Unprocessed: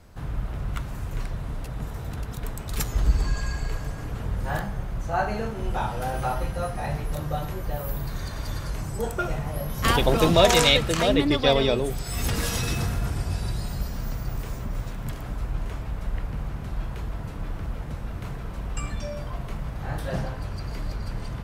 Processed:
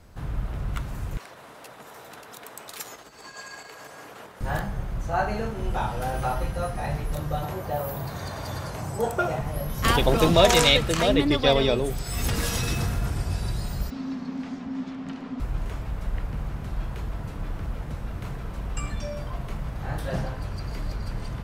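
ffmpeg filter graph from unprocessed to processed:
-filter_complex "[0:a]asettb=1/sr,asplit=3[a][b][c];[a]atrim=end=1.174[d];[b]atrim=start=1.17:end=4.41,asetpts=PTS-STARTPTS,afade=t=in:d=0.004:c=qsin,afade=t=out:st=3.236:d=0.004:c=qsin,acompressor=threshold=-26dB:ratio=6:attack=3.2:release=140:knee=1:detection=peak,highpass=470[e];[c]atrim=start=4.406[f];[d][e]acrossfade=d=0.004:c1=hsin:c2=qsin[g];[g][f]acrossfade=d=0.004:c1=qsin:c2=hsin,asettb=1/sr,asplit=3[h][i][j];[h]atrim=end=7.434[k];[i]atrim=start=7.43:end=9.41,asetpts=PTS-STARTPTS,afade=t=in:d=0.004:c=qsin,afade=t=out:st=1.976:d=0.004:c=qsin,highpass=f=71:w=0.5412,highpass=f=71:w=1.3066,equalizer=f=730:w=1.2:g=7.5[l];[j]atrim=start=9.406[m];[k][l]acrossfade=d=0.004:c1=hsin:c2=qsin[n];[n][m]acrossfade=d=0.004:c1=qsin:c2=hsin,asettb=1/sr,asplit=3[o][p][q];[o]atrim=end=13.904[r];[p]atrim=start=13.9:end=15.4,asetpts=PTS-STARTPTS,afade=t=in:d=0.004:c=qsin,afade=t=out:st=1.496:d=0.004:c=qsin,lowpass=7.3k,afreqshift=-300,acrossover=split=230 5700:gain=0.251 1 0.158[s][t][u];[s][t][u]amix=inputs=3:normalize=0[v];[q]atrim=start=15.396[w];[r][v]acrossfade=d=0.004:c1=hsin:c2=qsin[x];[x][w]acrossfade=d=0.004:c1=qsin:c2=hsin"

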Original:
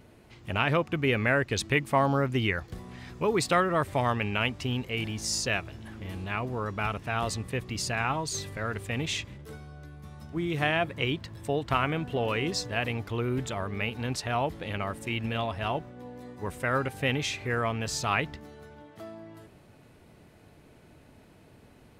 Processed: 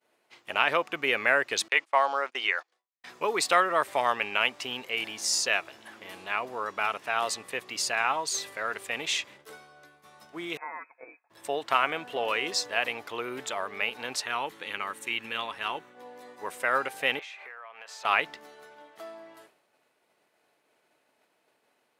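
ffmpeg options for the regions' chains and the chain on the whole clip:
-filter_complex "[0:a]asettb=1/sr,asplit=3[a][b][c];[a]atrim=end=1.684[d];[b]atrim=start=1.68:end=3.04,asetpts=PTS-STARTPTS,afade=t=in:d=0.004:c=qsin,afade=t=out:st=1.356:d=0.004:c=qsin,highpass=540,lowpass=7.8k,agate=range=-25dB:threshold=-43dB:ratio=16:release=100:detection=peak[e];[c]atrim=start=3.036[f];[d][e]acrossfade=d=0.004:c1=hsin:c2=qsin[g];[g][f]acrossfade=d=0.004:c1=qsin:c2=hsin,asettb=1/sr,asplit=3[h][i][j];[h]atrim=end=10.574[k];[i]atrim=start=10.57:end=11.3,asetpts=PTS-STARTPTS,afade=t=in:d=0.004:c=qsin,afade=t=out:st=0.726:d=0.004:c=qsin,aderivative,aecho=1:1:5:0.48,atrim=end_sample=32193,lowpass=f=2.3k:t=q:w=0.5098,lowpass=f=2.3k:t=q:w=0.6013,lowpass=f=2.3k:t=q:w=0.9,lowpass=f=2.3k:t=q:w=2.563,afreqshift=-2700[l];[j]atrim=start=11.296[m];[k][l]acrossfade=d=0.004:c1=hsin:c2=qsin[n];[n][m]acrossfade=d=0.004:c1=qsin:c2=hsin,asettb=1/sr,asplit=3[o][p][q];[o]atrim=end=14.234[r];[p]atrim=start=14.23:end=15.95,asetpts=PTS-STARTPTS,afade=t=in:d=0.004:c=qsin,afade=t=out:st=1.716:d=0.004:c=qsin,equalizer=f=650:t=o:w=0.5:g=-13,bandreject=f=5k:w=7.5[s];[q]atrim=start=15.946[t];[r][s]acrossfade=d=0.004:c1=hsin:c2=qsin[u];[u][t]acrossfade=d=0.004:c1=qsin:c2=hsin,asettb=1/sr,asplit=3[v][w][x];[v]atrim=end=17.194[y];[w]atrim=start=17.19:end=18.05,asetpts=PTS-STARTPTS,afade=t=in:d=0.004:c=qsin,afade=t=out:st=0.856:d=0.004:c=qsin,acrossover=split=540 2800:gain=0.0708 1 0.2[z][aa][ab];[z][aa][ab]amix=inputs=3:normalize=0,acompressor=threshold=-43dB:ratio=10:attack=3.2:release=140:knee=1:detection=peak[ac];[x]atrim=start=18.046[ad];[y][ac]acrossfade=d=0.004:c1=hsin:c2=qsin[ae];[ae][ad]acrossfade=d=0.004:c1=qsin:c2=hsin,highpass=590,agate=range=-33dB:threshold=-53dB:ratio=3:detection=peak,volume=3.5dB"

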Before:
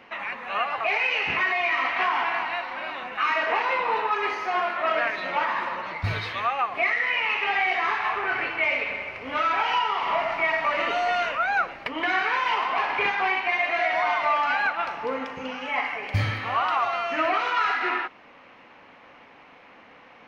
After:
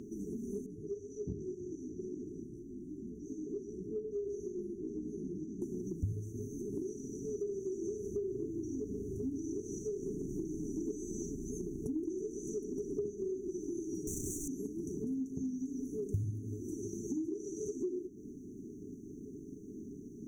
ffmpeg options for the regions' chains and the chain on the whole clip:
-filter_complex "[0:a]asettb=1/sr,asplit=3[a][b][c];[a]atrim=end=0.664[d];[b]atrim=start=0.66:end=5.62,asetpts=PTS-STARTPTS,afade=t=in:d=0.004:c=qsin,afade=t=out:st=4.956:d=0.004:c=qsin,lowpass=f=1.7k:p=1,equalizer=f=370:w=0.74:g=-6,flanger=delay=16.5:depth=3.8:speed=1.6[e];[c]atrim=start=5.616[f];[d][e]acrossfade=d=0.004:c1=hsin:c2=qsin[g];[g][f]acrossfade=d=0.004:c1=qsin:c2=hsin,asettb=1/sr,asplit=3[h][i][j];[h]atrim=end=14.074[k];[i]atrim=start=14.07:end=14.48,asetpts=PTS-STARTPTS,afade=t=in:d=0.004:c=qsin,afade=t=out:st=0.406:d=0.004:c=qsin,asplit=2[l][m];[m]adelay=32,volume=-10.5dB[n];[l][n]amix=inputs=2:normalize=0,atrim=end_sample=18081,asoftclip=type=hard:threshold=-28dB[o];[j]atrim=start=14.476[p];[k][o]acrossfade=d=0.004:c1=hsin:c2=qsin[q];[q][p]acrossfade=d=0.004:c1=qsin:c2=hsin,afftfilt=real='re*(1-between(b*sr/4096,440,5800))':imag='im*(1-between(b*sr/4096,440,5800))':win_size=4096:overlap=0.75,acompressor=threshold=-49dB:ratio=5,volume=13dB"

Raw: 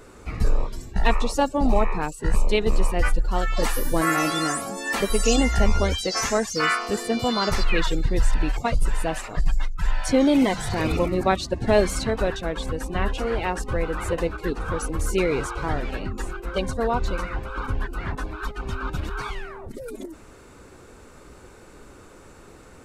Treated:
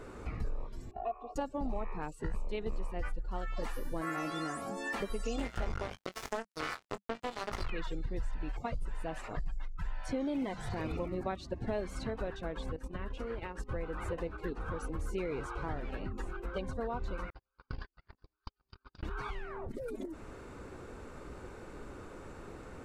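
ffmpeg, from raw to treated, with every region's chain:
-filter_complex "[0:a]asettb=1/sr,asplit=3[a][b][c];[a]atrim=end=0.914[d];[b]atrim=start=0.91:end=1.36,asetpts=PTS-STARTPTS,afade=t=in:d=0.004:c=qsin,afade=t=out:st=0.446:d=0.004:c=qsin,asplit=3[e][f][g];[e]bandpass=f=730:t=q:w=8,volume=0dB[h];[f]bandpass=f=1.09k:t=q:w=8,volume=-6dB[i];[g]bandpass=f=2.44k:t=q:w=8,volume=-9dB[j];[h][i][j]amix=inputs=3:normalize=0,tiltshelf=f=830:g=9.5,aecho=1:1:2.8:0.83,atrim=end_sample=19845[k];[c]atrim=start=1.356[l];[d][k]acrossfade=d=0.004:c1=hsin:c2=qsin[m];[m][l]acrossfade=d=0.004:c1=qsin:c2=hsin,asettb=1/sr,asplit=3[n][o][p];[n]atrim=end=5.384[q];[o]atrim=start=5.38:end=7.7,asetpts=PTS-STARTPTS,afade=t=in:d=0.004:c=qsin,afade=t=out:st=2.316:d=0.004:c=qsin,acrusher=bits=2:mix=0:aa=0.5,bandreject=f=200:w=6.4,asplit=2[r][s];[s]adelay=22,volume=-12dB[t];[r][t]amix=inputs=2:normalize=0,atrim=end_sample=102312[u];[p]atrim=start=7.696[v];[q][u]acrossfade=d=0.004:c1=hsin:c2=qsin[w];[w][v]acrossfade=d=0.004:c1=qsin:c2=hsin,asettb=1/sr,asplit=3[x][y][z];[x]atrim=end=12.764[aa];[y]atrim=start=12.76:end=13.71,asetpts=PTS-STARTPTS,afade=t=in:d=0.004:c=qsin,afade=t=out:st=0.946:d=0.004:c=qsin,equalizer=f=750:w=5.8:g=-10,acompressor=threshold=-24dB:ratio=10:attack=3.2:release=140:knee=1:detection=peak,agate=range=-11dB:threshold=-30dB:ratio=16:release=100:detection=peak[ab];[z]atrim=start=13.706[ac];[aa][ab]acrossfade=d=0.004:c1=hsin:c2=qsin[ad];[ad][ac]acrossfade=d=0.004:c1=qsin:c2=hsin,asettb=1/sr,asplit=3[ae][af][ag];[ae]atrim=end=17.304[ah];[af]atrim=start=17.3:end=19.03,asetpts=PTS-STARTPTS,afade=t=in:d=0.004:c=qsin,afade=t=out:st=1.726:d=0.004:c=qsin,agate=range=-55dB:threshold=-23dB:ratio=16:release=100:detection=peak,lowpass=f=4.8k:t=q:w=14,tiltshelf=f=850:g=-3.5[ai];[ag]atrim=start=19.026[aj];[ah][ai]acrossfade=d=0.004:c1=hsin:c2=qsin[ak];[ak][aj]acrossfade=d=0.004:c1=qsin:c2=hsin,highshelf=f=3.7k:g=-11.5,acompressor=threshold=-38dB:ratio=3"

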